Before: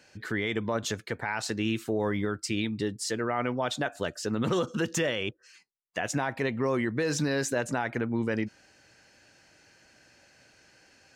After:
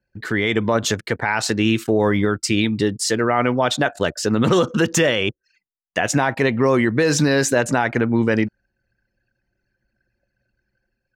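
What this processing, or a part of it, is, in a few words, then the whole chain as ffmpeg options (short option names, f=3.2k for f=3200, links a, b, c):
voice memo with heavy noise removal: -af "anlmdn=0.0158,dynaudnorm=f=110:g=7:m=3dB,volume=8dB"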